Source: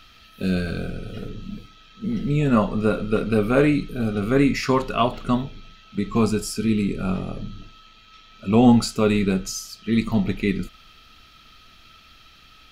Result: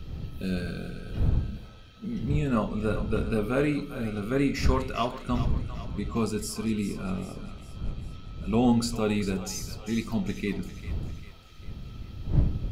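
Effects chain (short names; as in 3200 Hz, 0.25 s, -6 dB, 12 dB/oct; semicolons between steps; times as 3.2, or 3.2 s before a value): wind noise 100 Hz -25 dBFS; high shelf 6100 Hz +5 dB; split-band echo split 500 Hz, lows 85 ms, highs 0.398 s, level -12 dB; gain -8 dB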